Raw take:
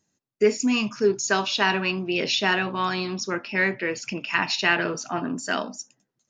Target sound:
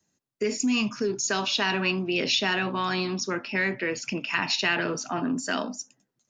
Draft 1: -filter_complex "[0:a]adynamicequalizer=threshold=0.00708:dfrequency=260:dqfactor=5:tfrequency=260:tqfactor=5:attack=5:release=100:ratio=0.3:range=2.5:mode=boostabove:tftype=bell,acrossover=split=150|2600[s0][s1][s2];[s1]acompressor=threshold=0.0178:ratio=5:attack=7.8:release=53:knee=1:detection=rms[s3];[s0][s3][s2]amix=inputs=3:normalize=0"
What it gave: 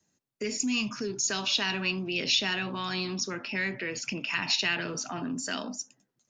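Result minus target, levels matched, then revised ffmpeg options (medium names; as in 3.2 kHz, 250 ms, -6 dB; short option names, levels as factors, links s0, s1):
compression: peak gain reduction +8 dB
-filter_complex "[0:a]adynamicequalizer=threshold=0.00708:dfrequency=260:dqfactor=5:tfrequency=260:tqfactor=5:attack=5:release=100:ratio=0.3:range=2.5:mode=boostabove:tftype=bell,acrossover=split=150|2600[s0][s1][s2];[s1]acompressor=threshold=0.0562:ratio=5:attack=7.8:release=53:knee=1:detection=rms[s3];[s0][s3][s2]amix=inputs=3:normalize=0"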